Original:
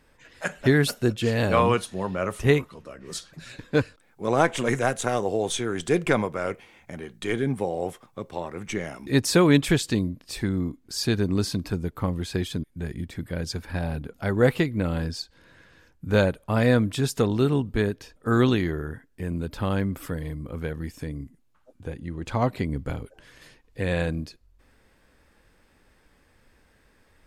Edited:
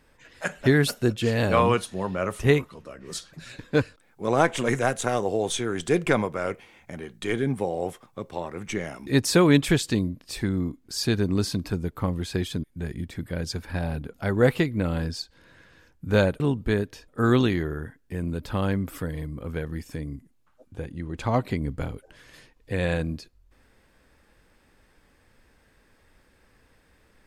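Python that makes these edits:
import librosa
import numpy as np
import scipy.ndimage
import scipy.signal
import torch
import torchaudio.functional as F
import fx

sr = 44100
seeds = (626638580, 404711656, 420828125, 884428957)

y = fx.edit(x, sr, fx.cut(start_s=16.4, length_s=1.08), tone=tone)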